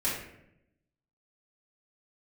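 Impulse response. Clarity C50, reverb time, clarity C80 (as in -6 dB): 2.5 dB, 0.80 s, 5.5 dB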